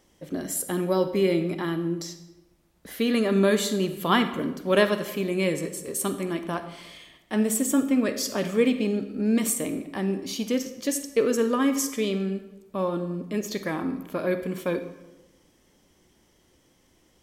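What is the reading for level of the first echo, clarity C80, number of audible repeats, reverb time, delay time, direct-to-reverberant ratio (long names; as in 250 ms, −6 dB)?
no echo audible, 12.5 dB, no echo audible, 1.0 s, no echo audible, 9.5 dB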